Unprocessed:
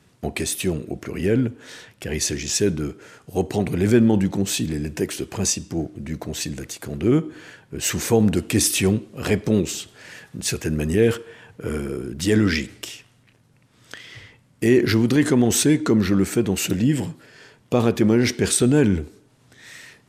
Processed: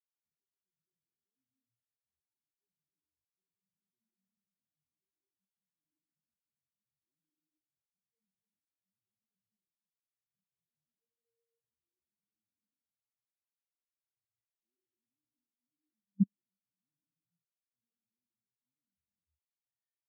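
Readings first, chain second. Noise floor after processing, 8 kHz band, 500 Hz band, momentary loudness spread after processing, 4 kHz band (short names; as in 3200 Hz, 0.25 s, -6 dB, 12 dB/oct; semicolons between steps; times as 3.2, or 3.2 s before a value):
under -85 dBFS, under -40 dB, under -40 dB, 0 LU, under -40 dB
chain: low shelf 390 Hz +5.5 dB; reverse; compressor 4:1, threshold -29 dBFS, peak gain reduction 18.5 dB; reverse; non-linear reverb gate 0.34 s flat, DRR -1.5 dB; level quantiser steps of 21 dB; spectral expander 4:1; gain -2.5 dB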